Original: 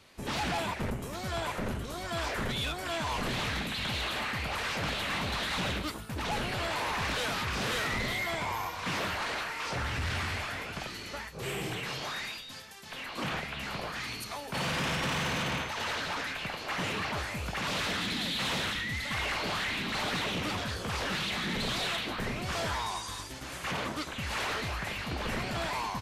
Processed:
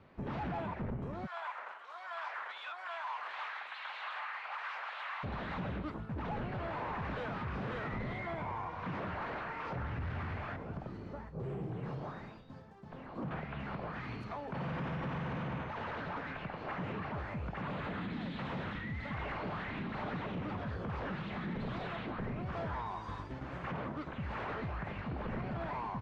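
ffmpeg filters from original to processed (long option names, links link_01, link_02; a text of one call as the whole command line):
ffmpeg -i in.wav -filter_complex "[0:a]asplit=3[link_01][link_02][link_03];[link_01]afade=type=out:start_time=1.25:duration=0.02[link_04];[link_02]highpass=frequency=900:width=0.5412,highpass=frequency=900:width=1.3066,afade=type=in:start_time=1.25:duration=0.02,afade=type=out:start_time=5.23:duration=0.02[link_05];[link_03]afade=type=in:start_time=5.23:duration=0.02[link_06];[link_04][link_05][link_06]amix=inputs=3:normalize=0,asettb=1/sr,asplit=3[link_07][link_08][link_09];[link_07]atrim=end=10.564[link_10];[link_08]atrim=start=10.56:end=13.31,asetpts=PTS-STARTPTS,afade=type=in:duration=0.004:curve=qsin,afade=type=out:start_time=2.746:duration=0.004:curve=qsin,equalizer=frequency=2400:width_type=o:width=2.1:gain=-12[link_11];[link_09]atrim=start=13.306[link_12];[link_10][link_11]acrossfade=duration=0.004:curve1=hsin:curve2=qsin[link_13];[link_13][link_12]acrossfade=duration=0.004:curve1=qsin:curve2=hsin,asettb=1/sr,asplit=3[link_14][link_15][link_16];[link_14]atrim=end=17.624[link_17];[link_15]atrim=start=17.62:end=18.13,asetpts=PTS-STARTPTS,afade=type=in:duration=0.004:curve=qsin,afade=type=out:start_time=0.506:duration=0.004:curve=qsin,equalizer=frequency=5500:width_type=o:width=0.33:gain=-9.5[link_18];[link_16]atrim=start=18.126[link_19];[link_17][link_18]acrossfade=duration=0.004:curve1=hsin:curve2=qsin[link_20];[link_20][link_19]acrossfade=duration=0.004:curve1=qsin:curve2=hsin,lowpass=1400,equalizer=frequency=150:width=1.1:gain=5.5,alimiter=level_in=8dB:limit=-24dB:level=0:latency=1:release=130,volume=-8dB" out.wav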